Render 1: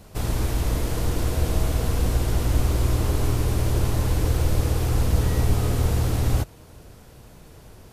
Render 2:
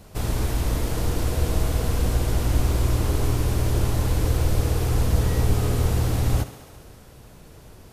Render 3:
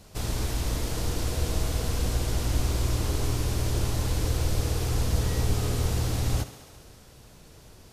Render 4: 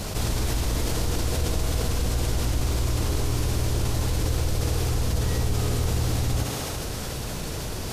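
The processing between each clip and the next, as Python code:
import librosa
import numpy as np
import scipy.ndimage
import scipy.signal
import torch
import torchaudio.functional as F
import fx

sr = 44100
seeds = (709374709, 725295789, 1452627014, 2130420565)

y1 = fx.echo_thinned(x, sr, ms=68, feedback_pct=79, hz=150.0, wet_db=-15)
y2 = fx.peak_eq(y1, sr, hz=5300.0, db=6.5, octaves=1.9)
y2 = F.gain(torch.from_numpy(y2), -5.0).numpy()
y3 = fx.env_flatten(y2, sr, amount_pct=70)
y3 = F.gain(torch.from_numpy(y3), -2.0).numpy()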